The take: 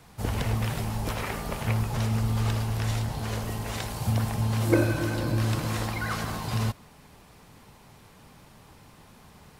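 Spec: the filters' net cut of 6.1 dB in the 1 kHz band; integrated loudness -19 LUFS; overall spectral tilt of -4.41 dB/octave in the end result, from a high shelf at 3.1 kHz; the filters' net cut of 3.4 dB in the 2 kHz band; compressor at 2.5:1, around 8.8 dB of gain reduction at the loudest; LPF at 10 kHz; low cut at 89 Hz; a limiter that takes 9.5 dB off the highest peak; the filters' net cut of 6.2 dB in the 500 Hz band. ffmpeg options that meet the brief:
-af "highpass=89,lowpass=10000,equalizer=f=500:t=o:g=-7.5,equalizer=f=1000:t=o:g=-5,equalizer=f=2000:t=o:g=-4.5,highshelf=f=3100:g=6.5,acompressor=threshold=0.0224:ratio=2.5,volume=8.91,alimiter=limit=0.299:level=0:latency=1"

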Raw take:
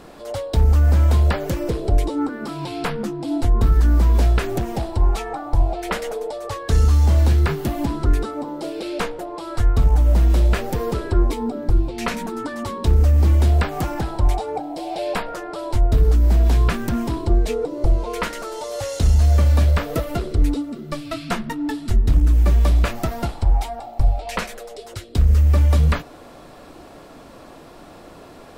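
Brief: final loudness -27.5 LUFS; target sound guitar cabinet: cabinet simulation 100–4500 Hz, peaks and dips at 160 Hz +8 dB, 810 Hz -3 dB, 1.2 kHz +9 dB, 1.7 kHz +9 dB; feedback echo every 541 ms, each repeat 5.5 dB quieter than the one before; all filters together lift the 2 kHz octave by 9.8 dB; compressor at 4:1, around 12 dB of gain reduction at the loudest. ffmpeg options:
-af "equalizer=f=2000:t=o:g=3.5,acompressor=threshold=0.0501:ratio=4,highpass=100,equalizer=f=160:t=q:w=4:g=8,equalizer=f=810:t=q:w=4:g=-3,equalizer=f=1200:t=q:w=4:g=9,equalizer=f=1700:t=q:w=4:g=9,lowpass=f=4500:w=0.5412,lowpass=f=4500:w=1.3066,aecho=1:1:541|1082|1623|2164|2705|3246|3787:0.531|0.281|0.149|0.079|0.0419|0.0222|0.0118,volume=1.19"

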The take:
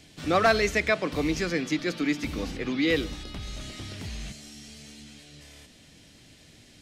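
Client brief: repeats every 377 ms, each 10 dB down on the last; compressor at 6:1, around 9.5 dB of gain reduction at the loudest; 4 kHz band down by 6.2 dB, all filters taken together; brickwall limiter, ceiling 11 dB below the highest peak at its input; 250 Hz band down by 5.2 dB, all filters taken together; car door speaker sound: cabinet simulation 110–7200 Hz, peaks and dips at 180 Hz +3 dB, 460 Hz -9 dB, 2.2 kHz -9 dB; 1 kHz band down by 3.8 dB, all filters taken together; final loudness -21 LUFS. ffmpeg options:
-af "equalizer=f=250:t=o:g=-6,equalizer=f=1000:t=o:g=-4,equalizer=f=4000:t=o:g=-6.5,acompressor=threshold=0.0355:ratio=6,alimiter=level_in=2:limit=0.0631:level=0:latency=1,volume=0.501,highpass=110,equalizer=f=180:t=q:w=4:g=3,equalizer=f=460:t=q:w=4:g=-9,equalizer=f=2200:t=q:w=4:g=-9,lowpass=f=7200:w=0.5412,lowpass=f=7200:w=1.3066,aecho=1:1:377|754|1131|1508:0.316|0.101|0.0324|0.0104,volume=11.9"

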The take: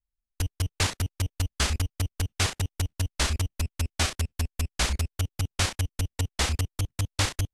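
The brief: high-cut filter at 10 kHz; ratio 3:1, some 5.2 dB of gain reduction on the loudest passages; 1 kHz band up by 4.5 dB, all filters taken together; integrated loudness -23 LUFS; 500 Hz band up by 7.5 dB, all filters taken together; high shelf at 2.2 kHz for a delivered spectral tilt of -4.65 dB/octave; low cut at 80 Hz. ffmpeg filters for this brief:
-af "highpass=80,lowpass=10000,equalizer=f=500:t=o:g=8.5,equalizer=f=1000:t=o:g=4.5,highshelf=f=2200:g=-6,acompressor=threshold=0.0398:ratio=3,volume=3.55"

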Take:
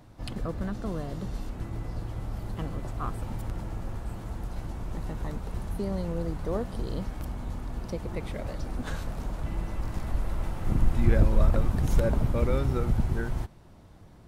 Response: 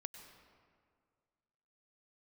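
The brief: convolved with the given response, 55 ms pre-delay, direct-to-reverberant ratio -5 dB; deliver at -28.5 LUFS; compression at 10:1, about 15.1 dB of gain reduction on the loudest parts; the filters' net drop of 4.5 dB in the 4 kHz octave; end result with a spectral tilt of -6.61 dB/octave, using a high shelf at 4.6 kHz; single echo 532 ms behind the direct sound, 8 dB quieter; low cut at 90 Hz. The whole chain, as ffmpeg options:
-filter_complex "[0:a]highpass=90,equalizer=f=4000:t=o:g=-4,highshelf=f=4600:g=-3.5,acompressor=threshold=0.0178:ratio=10,aecho=1:1:532:0.398,asplit=2[s0][s1];[1:a]atrim=start_sample=2205,adelay=55[s2];[s1][s2]afir=irnorm=-1:irlink=0,volume=2.82[s3];[s0][s3]amix=inputs=2:normalize=0,volume=1.88"

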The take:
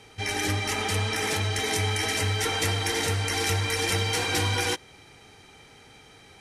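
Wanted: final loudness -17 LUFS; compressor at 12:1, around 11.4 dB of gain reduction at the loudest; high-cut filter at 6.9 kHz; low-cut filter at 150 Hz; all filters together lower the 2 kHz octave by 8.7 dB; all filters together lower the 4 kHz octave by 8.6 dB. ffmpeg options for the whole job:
-af "highpass=150,lowpass=6900,equalizer=f=2000:t=o:g=-8.5,equalizer=f=4000:t=o:g=-8,acompressor=threshold=0.0126:ratio=12,volume=16.8"

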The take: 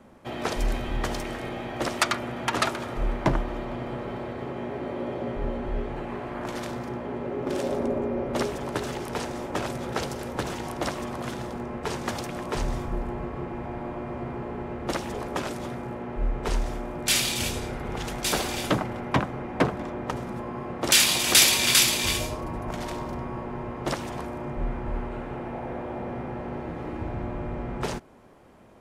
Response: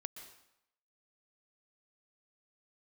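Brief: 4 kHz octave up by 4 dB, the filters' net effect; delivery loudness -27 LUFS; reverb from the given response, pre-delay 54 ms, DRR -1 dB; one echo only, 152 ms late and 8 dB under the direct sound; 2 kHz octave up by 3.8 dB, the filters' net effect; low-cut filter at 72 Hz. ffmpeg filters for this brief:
-filter_complex "[0:a]highpass=72,equalizer=f=2000:t=o:g=3.5,equalizer=f=4000:t=o:g=4,aecho=1:1:152:0.398,asplit=2[s0][s1];[1:a]atrim=start_sample=2205,adelay=54[s2];[s1][s2]afir=irnorm=-1:irlink=0,volume=1.58[s3];[s0][s3]amix=inputs=2:normalize=0,volume=0.562"

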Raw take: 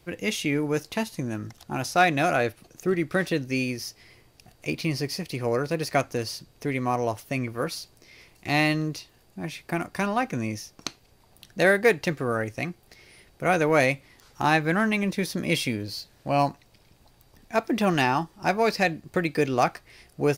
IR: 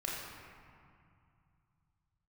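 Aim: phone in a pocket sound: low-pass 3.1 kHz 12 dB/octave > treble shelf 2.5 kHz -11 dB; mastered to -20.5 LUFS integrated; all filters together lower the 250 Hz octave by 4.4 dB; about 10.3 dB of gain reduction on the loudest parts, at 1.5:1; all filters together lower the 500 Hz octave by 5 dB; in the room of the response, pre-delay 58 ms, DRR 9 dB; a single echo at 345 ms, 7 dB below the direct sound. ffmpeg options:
-filter_complex "[0:a]equalizer=f=250:t=o:g=-4.5,equalizer=f=500:t=o:g=-4.5,acompressor=threshold=0.00447:ratio=1.5,aecho=1:1:345:0.447,asplit=2[s0][s1];[1:a]atrim=start_sample=2205,adelay=58[s2];[s1][s2]afir=irnorm=-1:irlink=0,volume=0.237[s3];[s0][s3]amix=inputs=2:normalize=0,lowpass=3100,highshelf=f=2500:g=-11,volume=7.94"

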